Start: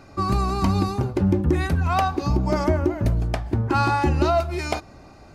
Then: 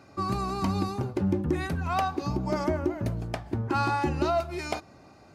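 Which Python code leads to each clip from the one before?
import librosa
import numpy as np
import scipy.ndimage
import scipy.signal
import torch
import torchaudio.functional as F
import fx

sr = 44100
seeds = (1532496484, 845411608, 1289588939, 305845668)

y = scipy.signal.sosfilt(scipy.signal.butter(2, 100.0, 'highpass', fs=sr, output='sos'), x)
y = y * librosa.db_to_amplitude(-5.5)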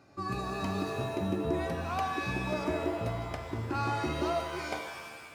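y = fx.rev_shimmer(x, sr, seeds[0], rt60_s=1.4, semitones=7, shimmer_db=-2, drr_db=5.5)
y = y * librosa.db_to_amplitude(-7.0)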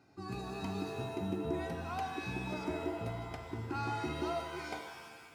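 y = fx.notch_comb(x, sr, f0_hz=580.0)
y = y * librosa.db_to_amplitude(-4.5)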